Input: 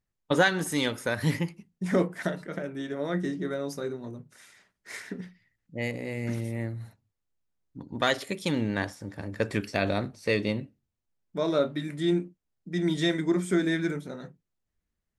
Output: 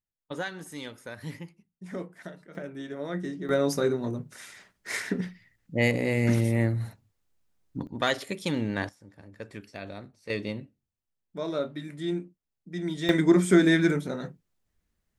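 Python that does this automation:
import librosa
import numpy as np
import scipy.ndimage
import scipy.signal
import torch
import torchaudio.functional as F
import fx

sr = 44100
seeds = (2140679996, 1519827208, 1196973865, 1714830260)

y = fx.gain(x, sr, db=fx.steps((0.0, -12.0), (2.55, -3.5), (3.49, 8.0), (7.87, -1.0), (8.89, -13.0), (10.3, -5.0), (13.09, 6.0)))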